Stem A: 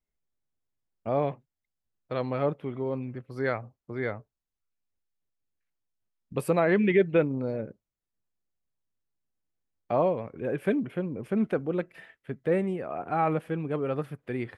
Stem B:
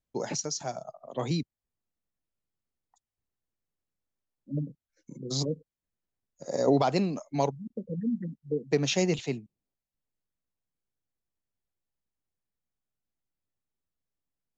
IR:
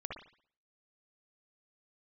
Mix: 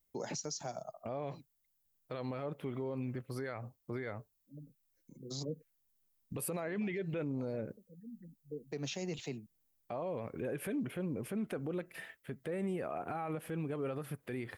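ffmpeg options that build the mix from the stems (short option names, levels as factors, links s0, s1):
-filter_complex "[0:a]aemphasis=mode=production:type=50fm,alimiter=limit=0.0708:level=0:latency=1:release=78,volume=1.06,asplit=2[s0][s1];[1:a]volume=0.668[s2];[s1]apad=whole_len=642832[s3];[s2][s3]sidechaincompress=threshold=0.00316:ratio=12:attack=12:release=1110[s4];[s0][s4]amix=inputs=2:normalize=0,alimiter=level_in=2:limit=0.0631:level=0:latency=1:release=113,volume=0.501"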